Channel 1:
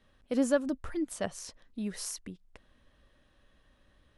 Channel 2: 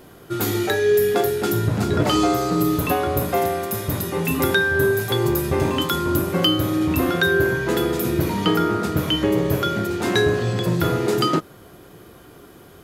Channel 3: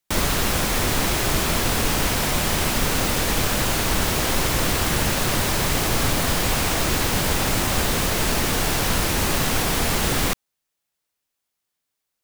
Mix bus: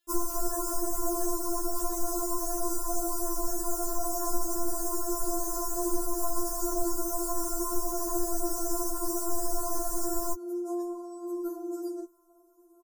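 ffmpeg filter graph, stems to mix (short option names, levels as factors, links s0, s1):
-filter_complex "[0:a]highpass=1400,acompressor=threshold=0.00282:ratio=6,volume=0.531[s0];[1:a]adelay=650,volume=0.2[s1];[2:a]volume=1.12[s2];[s1][s2]amix=inputs=2:normalize=0,asuperstop=centerf=2700:order=8:qfactor=0.55,acompressor=threshold=0.0631:ratio=6,volume=1[s3];[s0][s3]amix=inputs=2:normalize=0,afftfilt=real='re*4*eq(mod(b,16),0)':imag='im*4*eq(mod(b,16),0)':win_size=2048:overlap=0.75"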